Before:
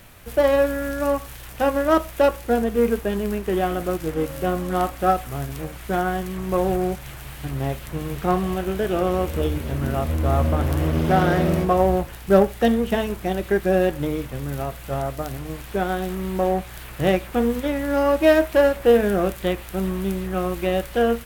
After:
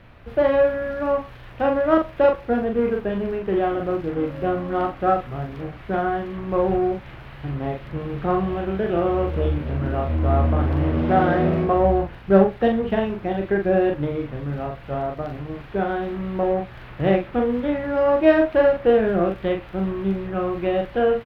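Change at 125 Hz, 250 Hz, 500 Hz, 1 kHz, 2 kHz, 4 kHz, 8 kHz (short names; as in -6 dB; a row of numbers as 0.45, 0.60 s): 0.0 dB, +0.5 dB, +0.5 dB, 0.0 dB, -1.5 dB, -6.0 dB, under -25 dB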